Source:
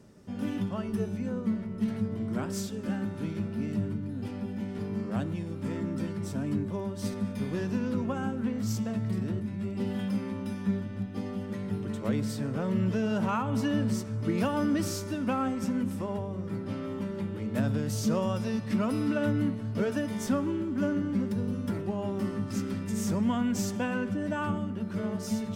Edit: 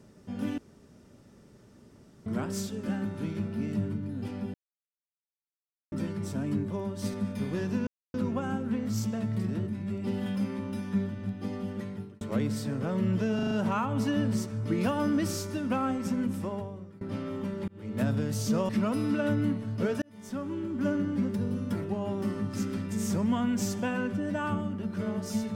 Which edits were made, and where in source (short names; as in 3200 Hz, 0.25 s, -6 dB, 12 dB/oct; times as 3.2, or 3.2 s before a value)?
0.58–2.26 room tone
4.54–5.92 mute
7.87 insert silence 0.27 s
11.5–11.94 fade out linear
13.08 stutter 0.04 s, 5 plays
16.02–16.58 fade out, to -23.5 dB
17.25–17.55 fade in
18.26–18.66 cut
19.99–20.82 fade in